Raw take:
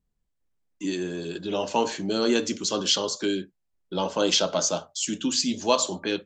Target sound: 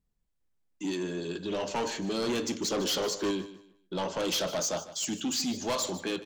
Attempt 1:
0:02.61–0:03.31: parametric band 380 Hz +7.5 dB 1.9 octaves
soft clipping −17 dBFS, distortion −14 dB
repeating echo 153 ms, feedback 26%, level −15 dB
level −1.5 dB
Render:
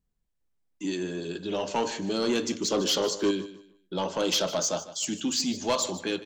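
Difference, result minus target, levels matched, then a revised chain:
soft clipping: distortion −7 dB
0:02.61–0:03.31: parametric band 380 Hz +7.5 dB 1.9 octaves
soft clipping −24.5 dBFS, distortion −7 dB
repeating echo 153 ms, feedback 26%, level −15 dB
level −1.5 dB

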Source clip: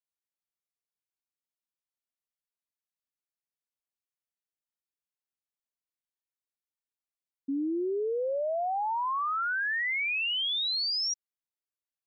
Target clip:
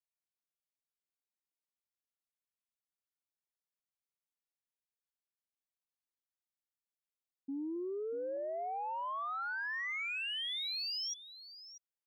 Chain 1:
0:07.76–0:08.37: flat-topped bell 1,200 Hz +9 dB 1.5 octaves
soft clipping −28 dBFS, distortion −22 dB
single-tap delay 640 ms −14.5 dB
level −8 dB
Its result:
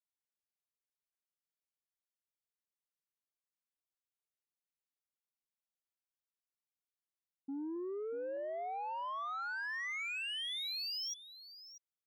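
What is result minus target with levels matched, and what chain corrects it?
soft clipping: distortion +10 dB
0:07.76–0:08.37: flat-topped bell 1,200 Hz +9 dB 1.5 octaves
soft clipping −22 dBFS, distortion −32 dB
single-tap delay 640 ms −14.5 dB
level −8 dB

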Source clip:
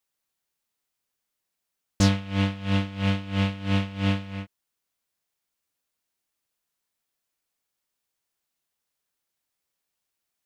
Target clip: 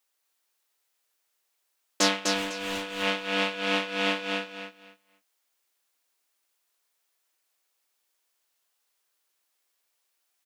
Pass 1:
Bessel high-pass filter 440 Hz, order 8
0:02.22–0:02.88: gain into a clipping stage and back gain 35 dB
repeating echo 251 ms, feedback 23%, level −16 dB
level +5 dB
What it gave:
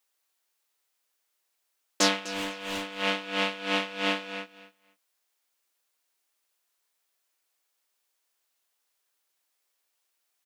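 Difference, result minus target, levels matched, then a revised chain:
echo-to-direct −12 dB
Bessel high-pass filter 440 Hz, order 8
0:02.22–0:02.88: gain into a clipping stage and back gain 35 dB
repeating echo 251 ms, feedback 23%, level −4 dB
level +5 dB

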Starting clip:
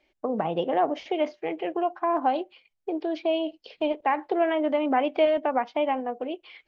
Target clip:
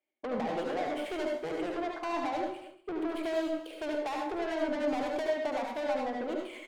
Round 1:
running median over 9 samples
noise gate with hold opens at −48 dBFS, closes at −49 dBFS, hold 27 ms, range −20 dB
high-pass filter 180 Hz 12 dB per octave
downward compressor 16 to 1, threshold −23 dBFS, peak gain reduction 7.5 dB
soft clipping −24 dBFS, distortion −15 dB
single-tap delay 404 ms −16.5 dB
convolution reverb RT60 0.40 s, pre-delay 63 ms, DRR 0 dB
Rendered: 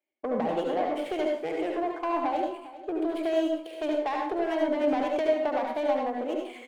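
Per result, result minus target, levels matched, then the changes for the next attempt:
echo 170 ms late; soft clipping: distortion −8 dB
change: single-tap delay 234 ms −16.5 dB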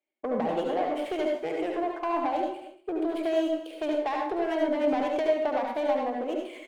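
soft clipping: distortion −8 dB
change: soft clipping −33 dBFS, distortion −7 dB

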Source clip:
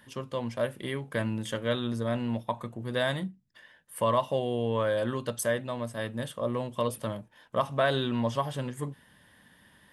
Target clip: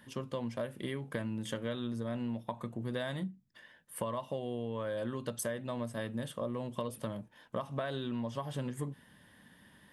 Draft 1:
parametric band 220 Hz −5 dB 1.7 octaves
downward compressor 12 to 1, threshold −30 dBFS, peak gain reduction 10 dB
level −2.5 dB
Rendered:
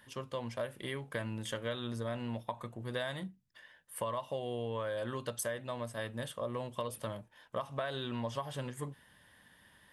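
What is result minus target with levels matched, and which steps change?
250 Hz band −4.0 dB
change: parametric band 220 Hz +4.5 dB 1.7 octaves

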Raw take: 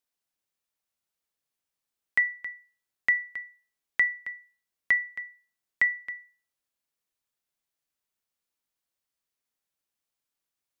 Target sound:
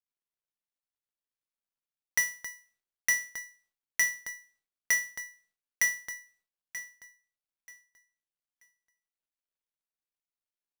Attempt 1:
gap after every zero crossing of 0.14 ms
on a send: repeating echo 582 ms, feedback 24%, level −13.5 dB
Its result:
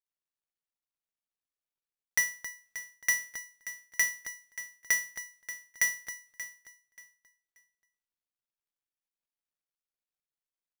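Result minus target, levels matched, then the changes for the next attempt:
echo 351 ms early
change: repeating echo 933 ms, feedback 24%, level −13.5 dB

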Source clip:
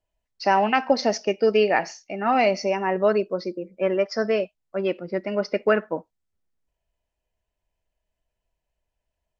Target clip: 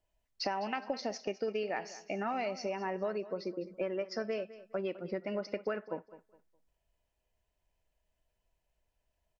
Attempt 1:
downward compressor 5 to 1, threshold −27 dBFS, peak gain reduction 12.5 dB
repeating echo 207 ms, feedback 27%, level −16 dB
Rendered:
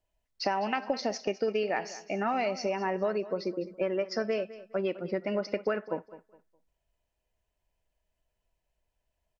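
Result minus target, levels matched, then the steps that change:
downward compressor: peak gain reduction −5.5 dB
change: downward compressor 5 to 1, threshold −34 dBFS, peak gain reduction 18 dB

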